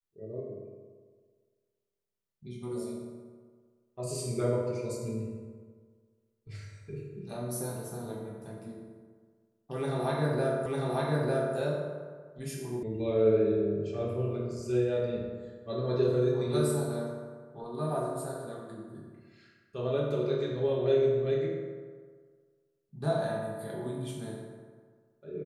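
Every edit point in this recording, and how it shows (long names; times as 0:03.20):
0:10.66: the same again, the last 0.9 s
0:12.83: cut off before it has died away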